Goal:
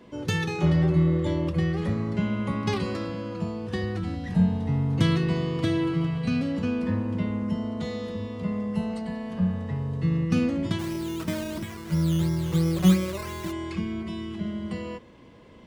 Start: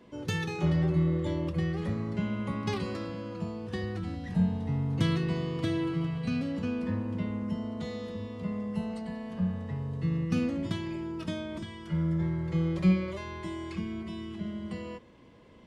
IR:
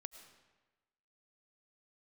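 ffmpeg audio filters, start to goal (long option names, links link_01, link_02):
-filter_complex "[0:a]asplit=3[link_01][link_02][link_03];[link_01]afade=type=out:start_time=10.78:duration=0.02[link_04];[link_02]acrusher=samples=11:mix=1:aa=0.000001:lfo=1:lforange=6.6:lforate=2.9,afade=type=in:start_time=10.78:duration=0.02,afade=type=out:start_time=13.51:duration=0.02[link_05];[link_03]afade=type=in:start_time=13.51:duration=0.02[link_06];[link_04][link_05][link_06]amix=inputs=3:normalize=0,volume=5dB"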